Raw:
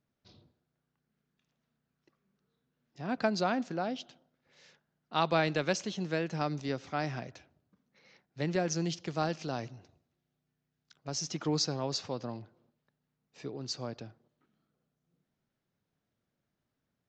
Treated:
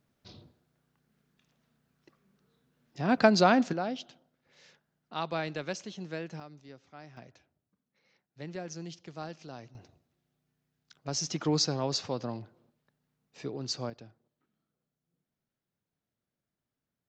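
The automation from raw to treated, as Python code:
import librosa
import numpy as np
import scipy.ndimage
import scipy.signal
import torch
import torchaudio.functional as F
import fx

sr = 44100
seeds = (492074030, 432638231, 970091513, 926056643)

y = fx.gain(x, sr, db=fx.steps((0.0, 8.0), (3.73, 1.0), (5.14, -5.5), (6.4, -16.0), (7.17, -9.0), (9.75, 3.0), (13.9, -5.5)))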